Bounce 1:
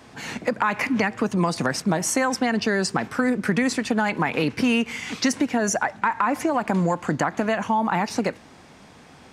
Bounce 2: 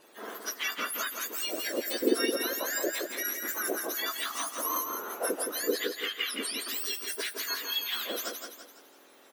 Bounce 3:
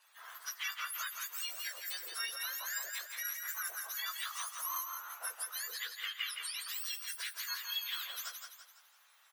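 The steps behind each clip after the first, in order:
frequency axis turned over on the octave scale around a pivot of 1,700 Hz; repeating echo 168 ms, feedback 43%, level −5.5 dB; level −6.5 dB
high-pass filter 1,000 Hz 24 dB per octave; level −6 dB

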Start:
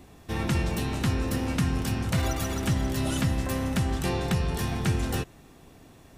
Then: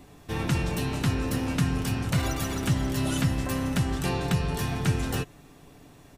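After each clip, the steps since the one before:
comb filter 6.9 ms, depth 34%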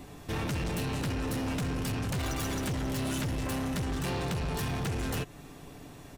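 in parallel at +2.5 dB: downward compressor, threshold −34 dBFS, peak gain reduction 14 dB
on the sum: hard clipping −26 dBFS, distortion −7 dB
level −3.5 dB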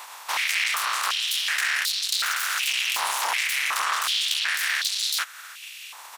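ceiling on every frequency bin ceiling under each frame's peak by 28 dB
high-pass on a step sequencer 2.7 Hz 940–4,000 Hz
level +3 dB

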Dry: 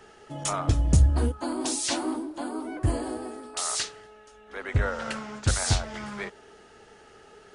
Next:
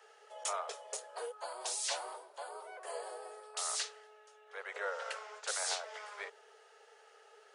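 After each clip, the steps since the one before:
Butterworth high-pass 420 Hz 96 dB per octave
level −7.5 dB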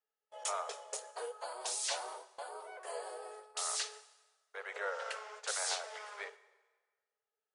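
noise gate −51 dBFS, range −35 dB
dense smooth reverb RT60 1.4 s, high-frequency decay 0.85×, pre-delay 0 ms, DRR 15 dB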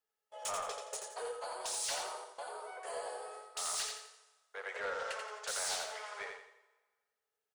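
soft clipping −33 dBFS, distortion −14 dB
on a send: repeating echo 86 ms, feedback 35%, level −5 dB
on the sum: level +1 dB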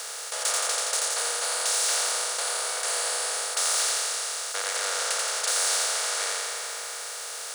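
compressor on every frequency bin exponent 0.2
high-pass filter 490 Hz 6 dB per octave
high-shelf EQ 3,000 Hz +9 dB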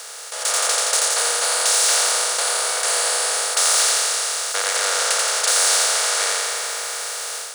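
automatic gain control gain up to 8 dB

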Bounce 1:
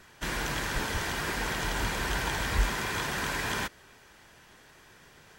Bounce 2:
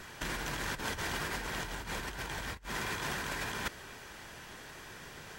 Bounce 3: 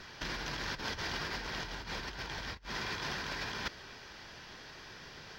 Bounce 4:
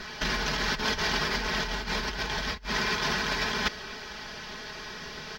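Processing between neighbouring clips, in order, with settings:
compressor whose output falls as the input rises −36 dBFS, ratio −0.5
high shelf with overshoot 6,600 Hz −10 dB, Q 3; level −2.5 dB
comb filter 4.7 ms; level +8.5 dB

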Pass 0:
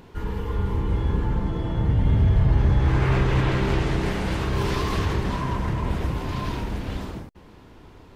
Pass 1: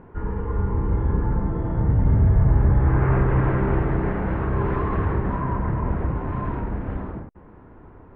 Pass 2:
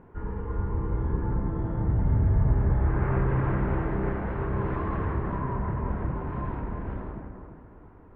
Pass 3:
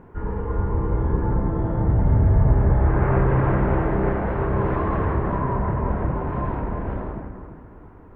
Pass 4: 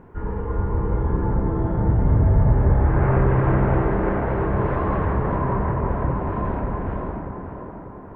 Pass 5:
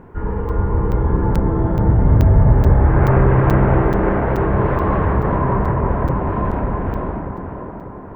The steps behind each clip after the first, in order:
low-pass filter 1,700 Hz 24 dB per octave; level +1.5 dB
delay with a low-pass on its return 343 ms, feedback 30%, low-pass 2,000 Hz, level −7 dB; level −6 dB
dynamic equaliser 620 Hz, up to +5 dB, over −46 dBFS, Q 1.3; level +5.5 dB
tape delay 592 ms, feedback 59%, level −6 dB, low-pass 1,900 Hz
regular buffer underruns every 0.43 s, samples 256, zero, from 0:00.49; level +5 dB

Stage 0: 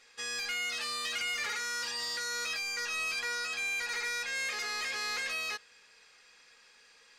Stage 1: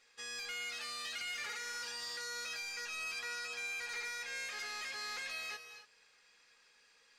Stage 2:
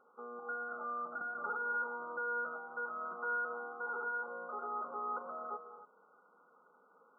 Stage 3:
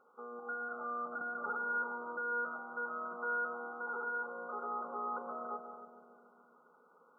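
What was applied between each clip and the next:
reverb whose tail is shaped and stops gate 300 ms rising, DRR 9 dB; level −7.5 dB
brick-wall band-pass 160–1,500 Hz; level +10.5 dB
feedback echo with a low-pass in the loop 142 ms, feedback 77%, low-pass 1,100 Hz, level −9.5 dB

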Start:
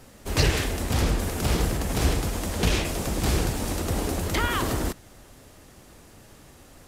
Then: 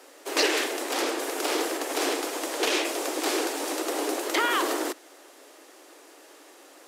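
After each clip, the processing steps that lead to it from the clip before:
Butterworth high-pass 290 Hz 72 dB per octave
high-shelf EQ 10,000 Hz −4.5 dB
level +2.5 dB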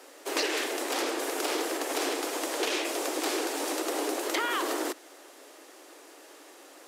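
downward compressor 3 to 1, threshold −27 dBFS, peak gain reduction 6.5 dB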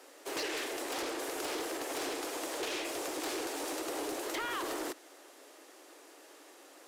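soft clipping −26 dBFS, distortion −15 dB
level −4.5 dB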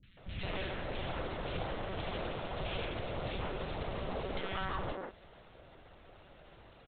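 one-pitch LPC vocoder at 8 kHz 190 Hz
three-band delay without the direct sound lows, highs, mids 30/170 ms, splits 230/1,900 Hz
level +1 dB

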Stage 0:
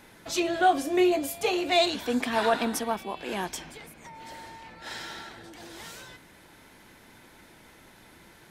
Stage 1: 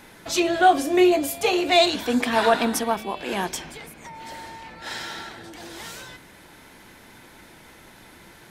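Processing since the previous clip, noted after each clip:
hum removal 53.74 Hz, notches 12
level +5.5 dB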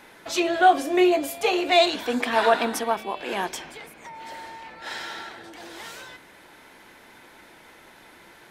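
bass and treble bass −10 dB, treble −5 dB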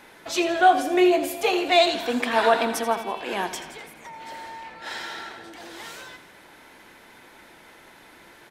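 repeating echo 83 ms, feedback 55%, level −13 dB

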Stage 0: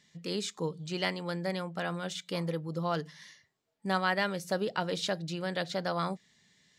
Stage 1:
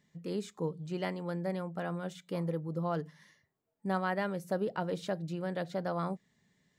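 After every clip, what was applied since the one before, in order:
parametric band 4,500 Hz −14 dB 2.7 octaves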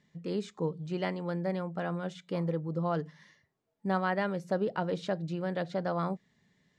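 low-pass filter 5,900 Hz 12 dB per octave
level +2.5 dB

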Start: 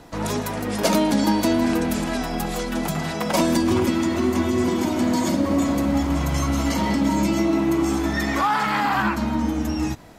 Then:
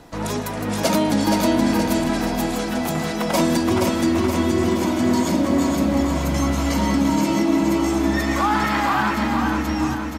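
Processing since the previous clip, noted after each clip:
repeating echo 473 ms, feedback 52%, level −4.5 dB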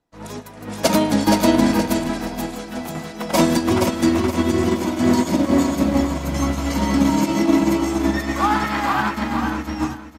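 expander for the loud parts 2.5 to 1, over −39 dBFS
level +5 dB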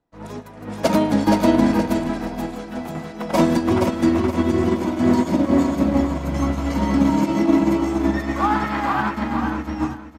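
high-shelf EQ 3,000 Hz −10.5 dB

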